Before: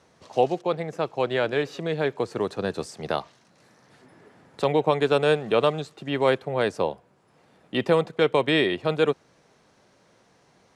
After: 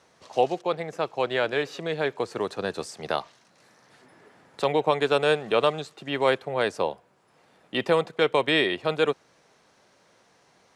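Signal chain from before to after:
low-shelf EQ 380 Hz −8 dB
level +1.5 dB

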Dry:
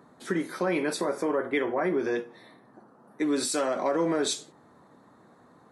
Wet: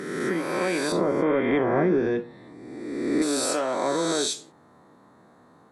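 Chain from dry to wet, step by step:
peak hold with a rise ahead of every peak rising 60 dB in 1.59 s
0:00.92–0:03.22: RIAA equalisation playback
level −1.5 dB

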